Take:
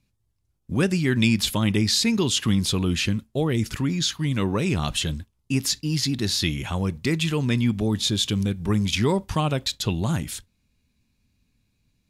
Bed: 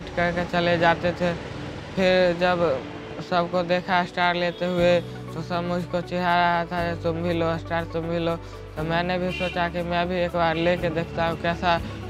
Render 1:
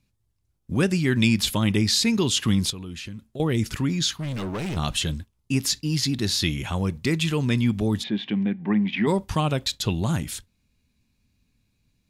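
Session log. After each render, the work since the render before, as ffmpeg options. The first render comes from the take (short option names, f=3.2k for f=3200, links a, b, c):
-filter_complex "[0:a]asettb=1/sr,asplit=3[a][b][c];[a]atrim=end=2.704[d];[b]atrim=start=2.7:end=3.4,asetpts=PTS-STARTPTS,afade=t=in:d=0.004:c=qsin,afade=t=out:st=0.696:d=0.004:c=qsin,acompressor=threshold=-39dB:ratio=2.5:attack=3.2:release=140:knee=1:detection=peak[e];[c]atrim=start=3.396[f];[d][e]acrossfade=d=0.004:c1=hsin:c2=qsin[g];[g][f]acrossfade=d=0.004:c1=qsin:c2=hsin,asettb=1/sr,asplit=3[h][i][j];[h]atrim=end=4.184[k];[i]atrim=start=4.18:end=4.77,asetpts=PTS-STARTPTS,afade=t=in:d=0.004:c=qsin,afade=t=out:st=0.586:d=0.004:c=qsin,volume=26.5dB,asoftclip=hard,volume=-26.5dB[l];[j]atrim=start=4.766[m];[k][l]acrossfade=d=0.004:c1=hsin:c2=qsin[n];[n][m]acrossfade=d=0.004:c1=qsin:c2=hsin,asplit=3[o][p][q];[o]afade=t=out:st=8.02:d=0.02[r];[p]highpass=f=180:w=0.5412,highpass=f=180:w=1.3066,equalizer=f=210:t=q:w=4:g=5,equalizer=f=460:t=q:w=4:g=-6,equalizer=f=780:t=q:w=4:g=6,equalizer=f=1.3k:t=q:w=4:g=-8,equalizer=f=1.9k:t=q:w=4:g=7,lowpass=f=2.6k:w=0.5412,lowpass=f=2.6k:w=1.3066,afade=t=in:st=8.02:d=0.02,afade=t=out:st=9.06:d=0.02[s];[q]afade=t=in:st=9.06:d=0.02[t];[r][s][t]amix=inputs=3:normalize=0"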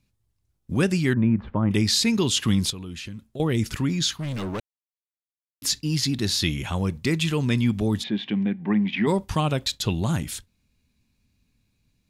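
-filter_complex "[0:a]asettb=1/sr,asplit=3[a][b][c];[a]atrim=end=1.134[d];[b]atrim=start=1.13:end=1.71,asetpts=PTS-STARTPTS,afade=t=in:d=0.004:c=qsin,afade=t=out:st=0.576:d=0.004:c=qsin,lowpass=f=1.4k:w=0.5412,lowpass=f=1.4k:w=1.3066[e];[c]atrim=start=1.706[f];[d][e]acrossfade=d=0.004:c1=hsin:c2=qsin[g];[g][f]acrossfade=d=0.004:c1=qsin:c2=hsin,asplit=3[h][i][j];[h]atrim=end=4.6,asetpts=PTS-STARTPTS,afade=t=out:st=4.596:d=0.004:c=hsin[k];[i]atrim=start=4.6:end=5.62,asetpts=PTS-STARTPTS,volume=0[l];[j]atrim=start=5.62,asetpts=PTS-STARTPTS,afade=t=in:d=0.004:c=hsin[m];[k][l][m]concat=n=3:v=0:a=1"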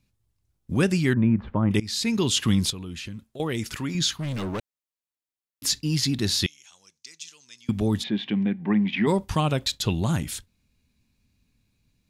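-filter_complex "[0:a]asettb=1/sr,asplit=3[a][b][c];[a]atrim=end=3.244[d];[b]atrim=start=3.24:end=3.95,asetpts=PTS-STARTPTS,afade=t=in:d=0.004:c=qsin,afade=t=out:st=0.706:d=0.004:c=qsin,lowshelf=f=310:g=-9[e];[c]atrim=start=3.946[f];[d][e]acrossfade=d=0.004:c1=hsin:c2=qsin[g];[g][f]acrossfade=d=0.004:c1=qsin:c2=hsin,asettb=1/sr,asplit=3[h][i][j];[h]atrim=end=6.464[k];[i]atrim=start=6.46:end=7.69,asetpts=PTS-STARTPTS,afade=t=in:d=0.004:c=qsin,afade=t=out:st=1.226:d=0.004:c=qsin,bandpass=f=6k:t=q:w=4.3[l];[j]atrim=start=7.686[m];[k][l]acrossfade=d=0.004:c1=hsin:c2=qsin[n];[n][m]acrossfade=d=0.004:c1=qsin:c2=hsin,asplit=2[o][p];[o]atrim=end=1.8,asetpts=PTS-STARTPTS,afade=t=out:st=1.796:d=0.004:c=hsin:silence=0.0944061[q];[p]atrim=start=1.8,asetpts=PTS-STARTPTS,afade=t=in:d=0.62:c=qsin:silence=0.0944061[r];[q][r]concat=n=2:v=0:a=1"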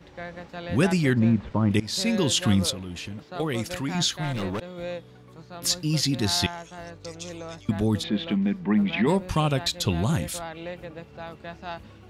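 -filter_complex "[1:a]volume=-14.5dB[a];[0:a][a]amix=inputs=2:normalize=0"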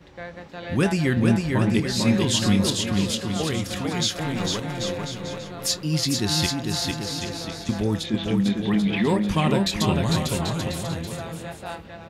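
-filter_complex "[0:a]asplit=2[a][b];[b]adelay=25,volume=-12.5dB[c];[a][c]amix=inputs=2:normalize=0,aecho=1:1:450|787.5|1041|1230|1373:0.631|0.398|0.251|0.158|0.1"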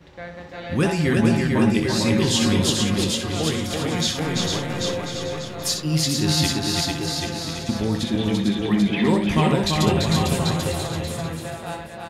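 -filter_complex "[0:a]asplit=2[a][b];[b]adelay=13,volume=-11.5dB[c];[a][c]amix=inputs=2:normalize=0,asplit=2[d][e];[e]aecho=0:1:63|340:0.422|0.668[f];[d][f]amix=inputs=2:normalize=0"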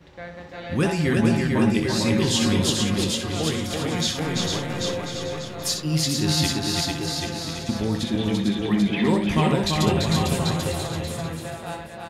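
-af "volume=-1.5dB"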